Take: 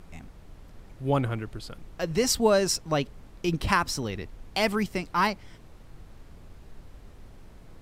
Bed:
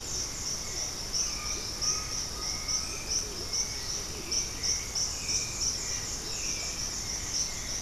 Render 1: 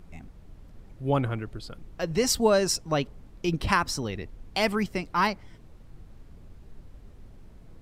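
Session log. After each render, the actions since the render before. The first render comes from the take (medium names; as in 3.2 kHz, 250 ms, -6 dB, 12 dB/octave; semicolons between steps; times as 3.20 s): noise reduction 6 dB, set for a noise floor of -50 dBFS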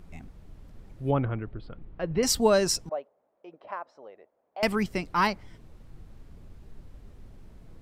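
1.11–2.23 s: distance through air 440 m; 2.89–4.63 s: ladder band-pass 680 Hz, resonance 60%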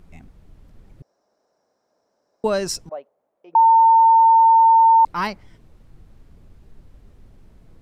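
1.02–2.44 s: room tone; 3.55–5.05 s: bleep 905 Hz -9 dBFS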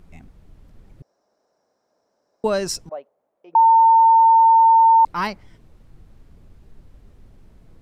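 no audible change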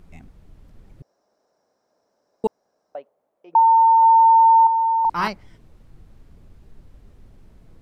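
2.47–2.95 s: room tone; 3.59–4.03 s: bass shelf 320 Hz -10.5 dB; 4.62–5.28 s: doubling 47 ms -5 dB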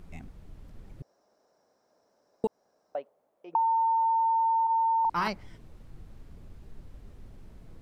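peak limiter -15 dBFS, peak gain reduction 6 dB; compression, threshold -24 dBFS, peak gain reduction 7 dB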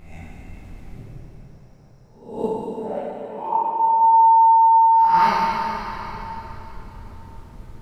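reverse spectral sustain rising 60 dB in 0.56 s; plate-style reverb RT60 3.9 s, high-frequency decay 0.85×, DRR -6.5 dB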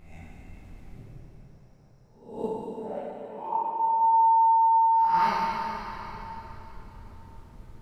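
trim -7 dB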